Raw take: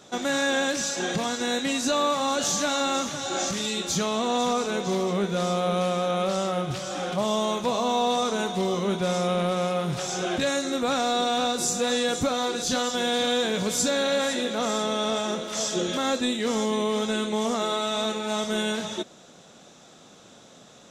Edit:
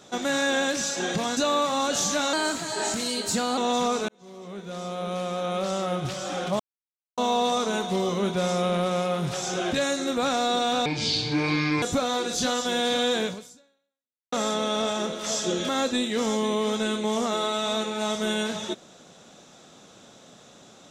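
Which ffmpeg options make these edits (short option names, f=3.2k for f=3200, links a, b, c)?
-filter_complex "[0:a]asplit=10[a][b][c][d][e][f][g][h][i][j];[a]atrim=end=1.372[k];[b]atrim=start=1.848:end=2.814[l];[c]atrim=start=2.81:end=4.23,asetpts=PTS-STARTPTS,asetrate=50274,aresample=44100[m];[d]atrim=start=4.226:end=4.74,asetpts=PTS-STARTPTS,afade=t=out:st=0.51:d=0.004:c=hsin[n];[e]atrim=start=4.74:end=7.25,asetpts=PTS-STARTPTS,afade=t=in:d=1.97,afade=t=out:st=2.506:d=0.004:c=hsin[o];[f]atrim=start=7.25:end=7.83,asetpts=PTS-STARTPTS,volume=0[p];[g]atrim=start=7.83:end=11.514,asetpts=PTS-STARTPTS,afade=t=in:d=0.004:c=hsin[q];[h]atrim=start=11.51:end=12.11,asetpts=PTS-STARTPTS,asetrate=27342,aresample=44100,atrim=end_sample=42677,asetpts=PTS-STARTPTS[r];[i]atrim=start=12.106:end=14.61,asetpts=PTS-STARTPTS,afade=t=out:st=1.424:d=1.08:c=exp[s];[j]atrim=start=14.61,asetpts=PTS-STARTPTS,afade=t=in:d=0.004:c=hsin[t];[k][l]acrossfade=d=0.004:c1=hsin:c2=hsin[u];[u][m]acrossfade=d=0.004:c1=hsin:c2=hsin[v];[n][o][p][q]concat=n=4:v=0:a=1[w];[v][w]acrossfade=d=0.004:c1=hsin:c2=hsin[x];[x][r]acrossfade=d=0.004:c1=hsin:c2=hsin[y];[s][t]concat=n=2:v=0:a=1[z];[y][z]acrossfade=d=0.004:c1=hsin:c2=hsin"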